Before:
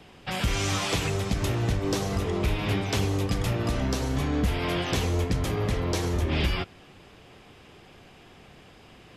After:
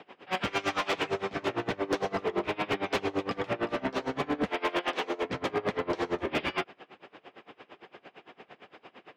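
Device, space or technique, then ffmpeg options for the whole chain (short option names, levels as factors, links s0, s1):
helicopter radio: -filter_complex "[0:a]asettb=1/sr,asplit=3[s0][s1][s2];[s0]atrim=end=4.494[s3];[s1]atrim=start=4.49:end=5.25,asetpts=PTS-STARTPTS,afade=t=in:d=0.004:c=qsin,afade=t=out:st=0.756:d=0.004:c=qsin,highpass=300[s4];[s2]atrim=start=5.246[s5];[s3][s4]acrossfade=d=0.004:c1=hsin:c2=qsin[s6];[s6][s5]acrossfade=d=0.004:c1=qsin:c2=hsin,highpass=350,lowpass=2500,aeval=exprs='val(0)*pow(10,-24*(0.5-0.5*cos(2*PI*8.8*n/s))/20)':c=same,asoftclip=type=hard:threshold=0.0299,volume=2.66"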